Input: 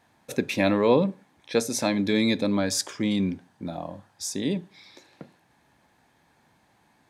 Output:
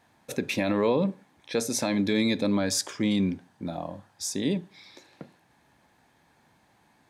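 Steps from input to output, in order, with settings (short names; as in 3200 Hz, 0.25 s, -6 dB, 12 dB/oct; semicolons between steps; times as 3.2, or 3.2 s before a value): limiter -15 dBFS, peak gain reduction 7 dB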